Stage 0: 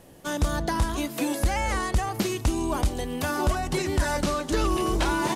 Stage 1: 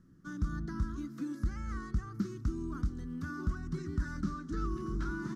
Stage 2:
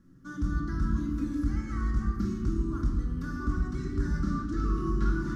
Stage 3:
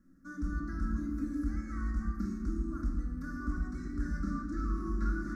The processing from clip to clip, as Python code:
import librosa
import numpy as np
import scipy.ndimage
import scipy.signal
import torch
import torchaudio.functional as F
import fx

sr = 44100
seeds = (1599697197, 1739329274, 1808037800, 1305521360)

y1 = fx.curve_eq(x, sr, hz=(100.0, 190.0, 330.0, 590.0, 860.0, 1300.0, 2600.0, 3900.0, 5700.0, 9400.0), db=(0, 5, -3, -27, -25, 1, -24, -17, -11, -24))
y1 = y1 * librosa.db_to_amplitude(-8.5)
y2 = fx.room_shoebox(y1, sr, seeds[0], volume_m3=1300.0, walls='mixed', distance_m=2.3)
y3 = fx.fixed_phaser(y2, sr, hz=620.0, stages=8)
y3 = y3 * librosa.db_to_amplitude(-3.0)